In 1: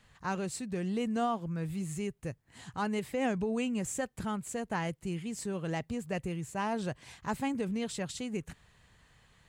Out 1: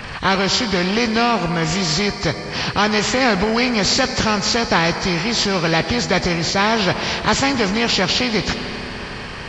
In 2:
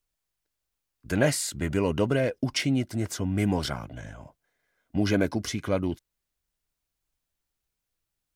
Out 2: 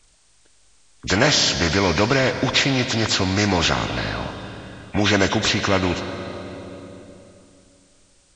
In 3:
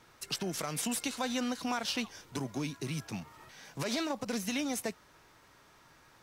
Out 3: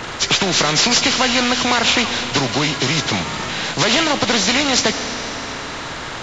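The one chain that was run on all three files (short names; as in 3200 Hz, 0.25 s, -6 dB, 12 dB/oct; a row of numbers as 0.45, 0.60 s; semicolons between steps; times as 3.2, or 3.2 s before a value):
nonlinear frequency compression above 1700 Hz 1.5:1; Schroeder reverb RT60 2.8 s, combs from 25 ms, DRR 16 dB; spectral compressor 2:1; normalise peaks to -2 dBFS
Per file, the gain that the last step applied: +17.0, +8.5, +19.5 dB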